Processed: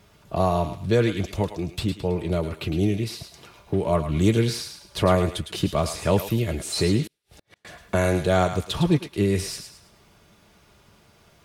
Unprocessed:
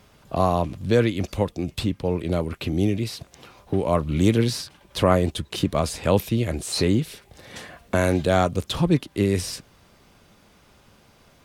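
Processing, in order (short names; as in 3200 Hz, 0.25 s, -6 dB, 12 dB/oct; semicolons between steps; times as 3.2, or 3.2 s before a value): notch comb 260 Hz; thinning echo 0.108 s, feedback 36%, high-pass 1000 Hz, level -7 dB; 7.07–7.65 flipped gate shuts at -34 dBFS, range -37 dB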